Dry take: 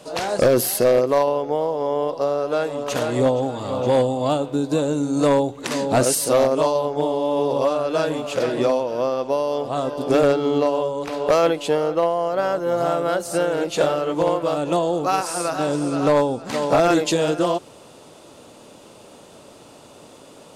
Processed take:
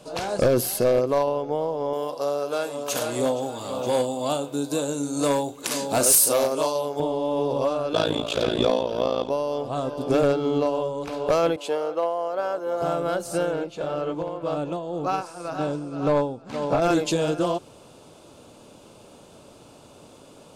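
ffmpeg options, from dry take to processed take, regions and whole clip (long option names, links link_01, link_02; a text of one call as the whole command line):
ffmpeg -i in.wav -filter_complex "[0:a]asettb=1/sr,asplit=3[link_01][link_02][link_03];[link_01]atrim=end=1.934[link_04];[link_02]atrim=start=1.93:end=7,asetpts=PTS-STARTPTS,afade=type=in:duration=0.004:curve=qsin,afade=type=out:start_time=5.066:duration=0.004:curve=qsin,aemphasis=mode=production:type=bsi,aeval=exprs='0.531*(abs(mod(val(0)/0.531+3,4)-2)-1)':channel_layout=same,asplit=2[link_05][link_06];[link_06]adelay=35,volume=-11.5dB[link_07];[link_05][link_07]amix=inputs=2:normalize=0,atrim=end_sample=223587[link_08];[link_03]atrim=start=6.996[link_09];[link_04][link_08]acrossfade=duration=0.004:curve1=hsin:curve2=qsin[link_10];[link_10][link_09]acrossfade=duration=0.004:curve1=qsin:curve2=hsin,asettb=1/sr,asplit=3[link_11][link_12][link_13];[link_11]atrim=end=7.934[link_14];[link_12]atrim=start=7.93:end=9.3,asetpts=PTS-STARTPTS,afade=type=in:duration=0.004:curve=qsin,afade=type=out:start_time=1.366:duration=0.004:curve=qsin,equalizer=frequency=3500:width_type=o:width=0.44:gain=12,acontrast=51,tremolo=f=56:d=0.919[link_15];[link_13]atrim=start=9.296[link_16];[link_14][link_15]acrossfade=duration=0.004:curve1=hsin:curve2=qsin[link_17];[link_17][link_16]acrossfade=duration=0.004:curve1=qsin:curve2=hsin,asettb=1/sr,asplit=3[link_18][link_19][link_20];[link_18]atrim=end=11.564[link_21];[link_19]atrim=start=11.56:end=12.82,asetpts=PTS-STARTPTS,afade=type=in:duration=0.004:curve=qsin,afade=type=out:start_time=1.256:duration=0.004:curve=qsin,highpass=400,adynamicequalizer=threshold=0.0158:dfrequency=1700:dqfactor=0.7:tfrequency=1700:tqfactor=0.7:attack=5:release=100:ratio=0.375:range=2:mode=cutabove:tftype=highshelf[link_22];[link_20]atrim=start=12.816[link_23];[link_21][link_22]acrossfade=duration=0.004:curve1=hsin:curve2=qsin[link_24];[link_24][link_23]acrossfade=duration=0.004:curve1=qsin:curve2=hsin,asettb=1/sr,asplit=3[link_25][link_26][link_27];[link_25]atrim=end=13.514[link_28];[link_26]atrim=start=13.51:end=16.82,asetpts=PTS-STARTPTS,afade=type=in:duration=0.004:curve=qsin,afade=type=out:start_time=3.306:duration=0.004:curve=qsin,lowpass=frequency=3500:poles=1,tremolo=f=1.9:d=0.62[link_29];[link_27]atrim=start=16.816[link_30];[link_28][link_29]acrossfade=duration=0.004:curve1=hsin:curve2=qsin[link_31];[link_31][link_30]acrossfade=duration=0.004:curve1=qsin:curve2=hsin,lowshelf=frequency=150:gain=7.5,bandreject=frequency=1900:width=10,volume=-4.5dB" out.wav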